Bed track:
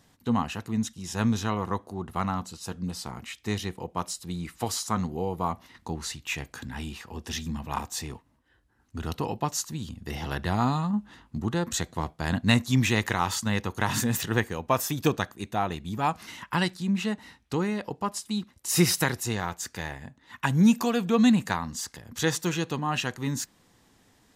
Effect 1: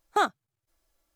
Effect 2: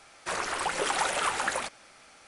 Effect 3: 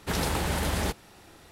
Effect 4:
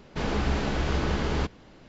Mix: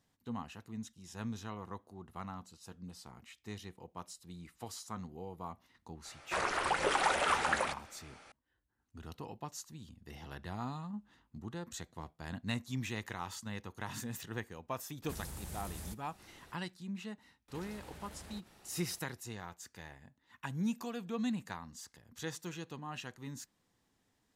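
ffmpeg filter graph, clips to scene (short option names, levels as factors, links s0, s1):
-filter_complex "[3:a]asplit=2[s0][s1];[0:a]volume=0.168[s2];[2:a]aemphasis=mode=reproduction:type=cd[s3];[s0]acrossover=split=190|6300[s4][s5][s6];[s4]acompressor=threshold=0.0126:ratio=4[s7];[s5]acompressor=threshold=0.00316:ratio=4[s8];[s6]acompressor=threshold=0.00794:ratio=4[s9];[s7][s8][s9]amix=inputs=3:normalize=0[s10];[s1]acompressor=threshold=0.01:ratio=6:attack=3.2:release=140:knee=1:detection=peak[s11];[s3]atrim=end=2.27,asetpts=PTS-STARTPTS,volume=0.841,afade=t=in:d=0.004:c=hsin,afade=t=out:st=2.266:d=0.004:c=hsin,adelay=6050[s12];[s10]atrim=end=1.51,asetpts=PTS-STARTPTS,volume=0.473,afade=t=in:d=0.004:c=hsin,afade=t=out:st=1.506:d=0.004:c=hsin,adelay=15020[s13];[s11]atrim=end=1.51,asetpts=PTS-STARTPTS,volume=0.355,afade=t=in:d=0.004:c=hsin,afade=t=out:st=1.506:d=0.004:c=hsin,adelay=770868S[s14];[s2][s12][s13][s14]amix=inputs=4:normalize=0"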